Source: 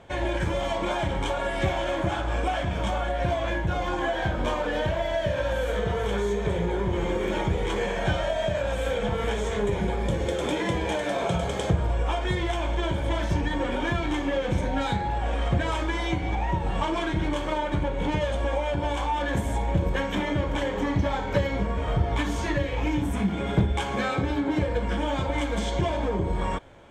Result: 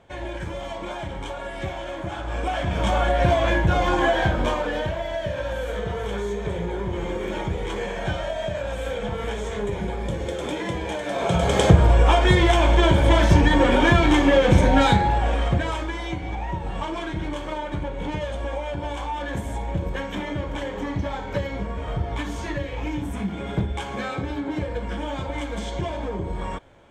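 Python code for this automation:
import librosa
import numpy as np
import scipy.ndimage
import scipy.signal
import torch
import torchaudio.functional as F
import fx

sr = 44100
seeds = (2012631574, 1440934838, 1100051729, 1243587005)

y = fx.gain(x, sr, db=fx.line((2.04, -5.0), (3.02, 7.0), (4.12, 7.0), (4.99, -1.5), (11.04, -1.5), (11.59, 10.0), (14.85, 10.0), (15.97, -2.5)))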